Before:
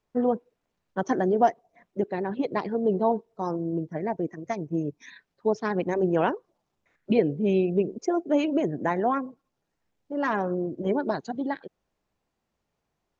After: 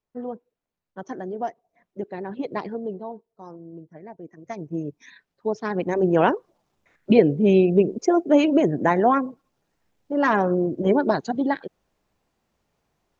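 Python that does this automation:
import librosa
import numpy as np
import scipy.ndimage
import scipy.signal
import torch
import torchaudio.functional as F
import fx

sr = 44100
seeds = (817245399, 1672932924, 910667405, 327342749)

y = fx.gain(x, sr, db=fx.line((1.36, -8.5), (2.65, -0.5), (3.07, -12.0), (4.2, -12.0), (4.62, -1.0), (5.52, -1.0), (6.33, 6.5)))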